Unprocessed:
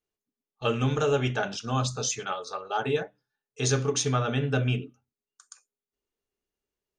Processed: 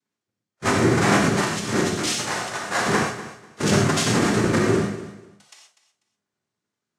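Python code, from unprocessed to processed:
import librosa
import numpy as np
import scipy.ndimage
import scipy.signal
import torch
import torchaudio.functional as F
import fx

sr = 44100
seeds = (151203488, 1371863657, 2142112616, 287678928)

p1 = fx.halfwave_hold(x, sr)
p2 = fx.noise_vocoder(p1, sr, seeds[0], bands=3)
p3 = fx.rev_gated(p2, sr, seeds[1], gate_ms=150, shape='flat', drr_db=1.0)
p4 = fx.hpss(p3, sr, part='harmonic', gain_db=5)
p5 = p4 + fx.echo_feedback(p4, sr, ms=246, feedback_pct=22, wet_db=-14.5, dry=0)
y = p5 * librosa.db_to_amplitude(-3.0)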